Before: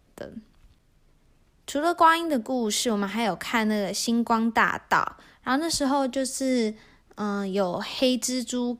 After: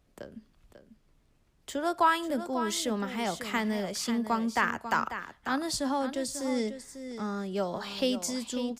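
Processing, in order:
single-tap delay 544 ms −10.5 dB
level −6 dB

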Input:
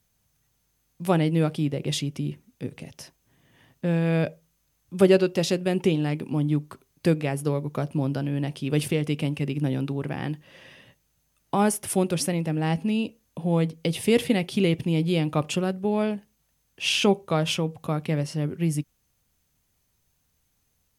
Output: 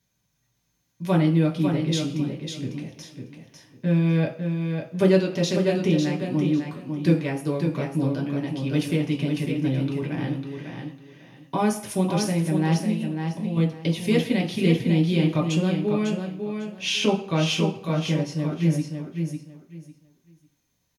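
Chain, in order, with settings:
0:12.90–0:13.57: downward compressor, threshold −29 dBFS, peak gain reduction 10.5 dB
repeating echo 550 ms, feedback 21%, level −6 dB
convolution reverb, pre-delay 3 ms, DRR −0.5 dB
level −7.5 dB

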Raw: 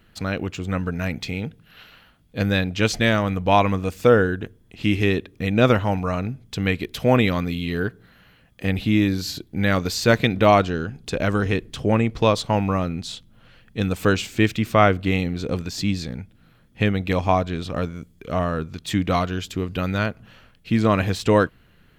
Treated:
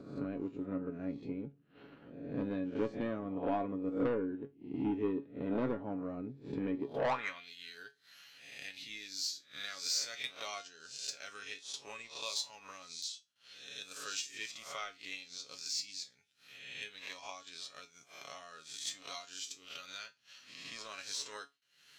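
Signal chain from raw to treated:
peak hold with a rise ahead of every peak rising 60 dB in 0.59 s
band-pass filter sweep 320 Hz → 5,800 Hz, 0:06.91–0:07.54
dynamic equaliser 360 Hz, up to −4 dB, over −38 dBFS, Q 2.2
upward compression, threshold −37 dBFS
noise gate with hold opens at −59 dBFS
transient designer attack +8 dB, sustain −5 dB
soft clipping −19 dBFS, distortion −9 dB
tuned comb filter 140 Hz, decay 0.2 s, harmonics all, mix 80%
level +1 dB

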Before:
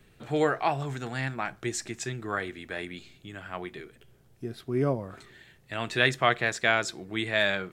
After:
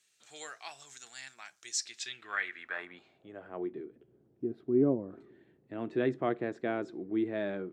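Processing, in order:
band-pass filter sweep 6,600 Hz → 310 Hz, 0:01.64–0:03.70
level +5 dB

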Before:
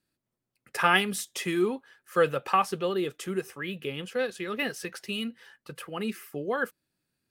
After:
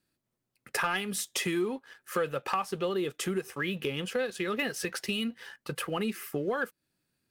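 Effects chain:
downward compressor 4 to 1, threshold −36 dBFS, peak gain reduction 16.5 dB
leveller curve on the samples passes 1
level +3.5 dB

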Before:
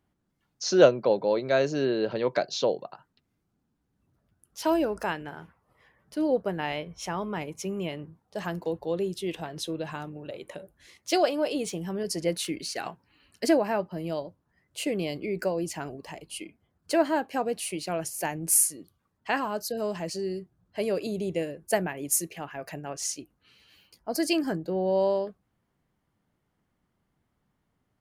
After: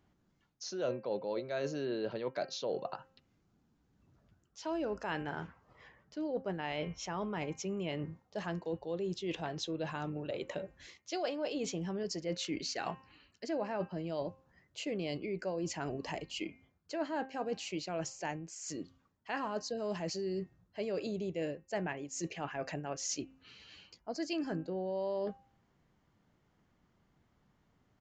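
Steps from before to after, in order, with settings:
hum removal 264.8 Hz, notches 11
reversed playback
downward compressor 6 to 1, threshold −38 dBFS, peak gain reduction 24 dB
reversed playback
downsampling to 16,000 Hz
level +3.5 dB

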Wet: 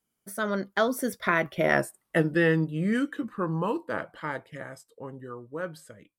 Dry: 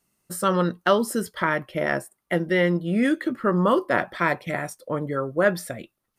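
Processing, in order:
source passing by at 0:01.81, 40 m/s, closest 23 metres
level +1.5 dB

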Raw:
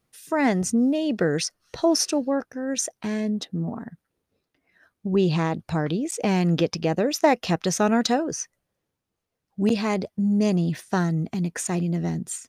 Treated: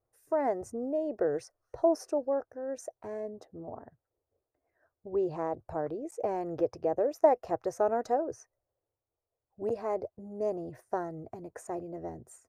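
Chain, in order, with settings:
drawn EQ curve 120 Hz 0 dB, 180 Hz −21 dB, 350 Hz −1 dB, 630 Hz +5 dB, 1,900 Hz −12 dB, 3,400 Hz −28 dB, 5,300 Hz −18 dB, 13,000 Hz −11 dB
level −6.5 dB

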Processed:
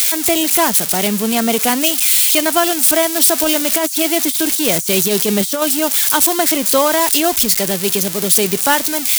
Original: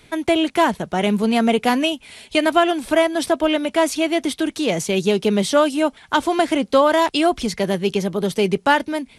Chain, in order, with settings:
spike at every zero crossing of −9.5 dBFS
high-shelf EQ 3,600 Hz +5 dB
0:03.35–0:05.62: compressor whose output falls as the input rises −15 dBFS, ratio −0.5

